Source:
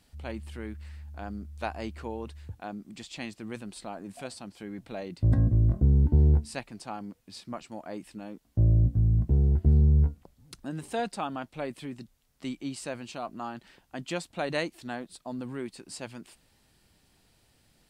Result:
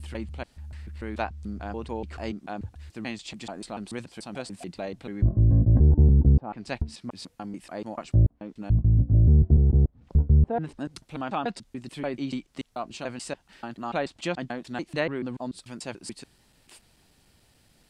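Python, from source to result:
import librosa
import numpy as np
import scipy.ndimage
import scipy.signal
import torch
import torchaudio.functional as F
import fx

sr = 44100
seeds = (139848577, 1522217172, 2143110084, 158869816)

y = fx.block_reorder(x, sr, ms=145.0, group=4)
y = fx.env_lowpass_down(y, sr, base_hz=740.0, full_db=-21.0)
y = y * librosa.db_to_amplitude(3.5)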